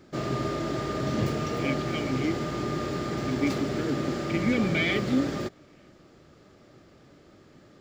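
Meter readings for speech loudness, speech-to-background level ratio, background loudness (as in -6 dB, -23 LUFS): -30.0 LUFS, 0.5 dB, -30.5 LUFS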